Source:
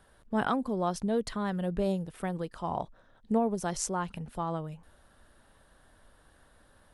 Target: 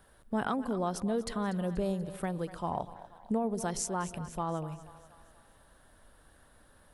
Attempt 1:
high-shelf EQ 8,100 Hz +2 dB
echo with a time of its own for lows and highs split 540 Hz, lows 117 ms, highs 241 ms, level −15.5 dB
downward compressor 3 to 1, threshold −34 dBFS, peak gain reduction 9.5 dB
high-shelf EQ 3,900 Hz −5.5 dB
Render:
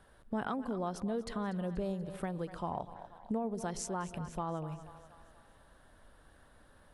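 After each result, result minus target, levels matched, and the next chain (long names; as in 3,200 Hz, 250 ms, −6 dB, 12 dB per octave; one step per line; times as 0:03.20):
downward compressor: peak gain reduction +4.5 dB; 8,000 Hz band −3.0 dB
high-shelf EQ 8,100 Hz +2 dB
echo with a time of its own for lows and highs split 540 Hz, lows 117 ms, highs 241 ms, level −15.5 dB
downward compressor 3 to 1, threshold −27.5 dBFS, peak gain reduction 5 dB
high-shelf EQ 3,900 Hz −5.5 dB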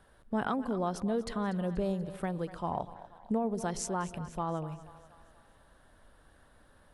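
8,000 Hz band −3.5 dB
high-shelf EQ 8,100 Hz +13 dB
echo with a time of its own for lows and highs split 540 Hz, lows 117 ms, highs 241 ms, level −15.5 dB
downward compressor 3 to 1, threshold −27.5 dBFS, peak gain reduction 5 dB
high-shelf EQ 3,900 Hz −5.5 dB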